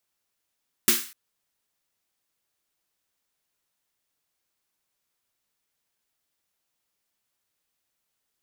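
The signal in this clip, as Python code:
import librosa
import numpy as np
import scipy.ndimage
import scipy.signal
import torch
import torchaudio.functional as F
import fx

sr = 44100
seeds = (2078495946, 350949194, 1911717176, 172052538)

y = fx.drum_snare(sr, seeds[0], length_s=0.25, hz=230.0, second_hz=350.0, noise_db=9, noise_from_hz=1300.0, decay_s=0.26, noise_decay_s=0.42)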